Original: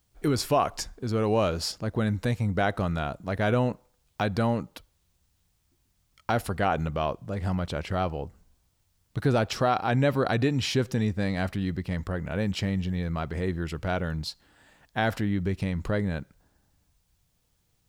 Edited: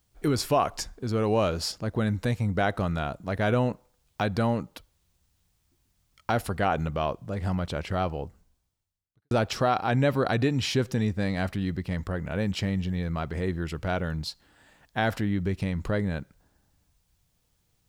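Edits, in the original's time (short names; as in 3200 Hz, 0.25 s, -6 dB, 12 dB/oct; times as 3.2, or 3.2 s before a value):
8.24–9.31 fade out quadratic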